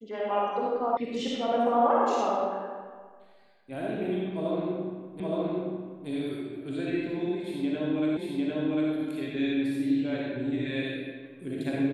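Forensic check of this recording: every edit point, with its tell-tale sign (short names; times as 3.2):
0.97 sound cut off
5.2 repeat of the last 0.87 s
8.17 repeat of the last 0.75 s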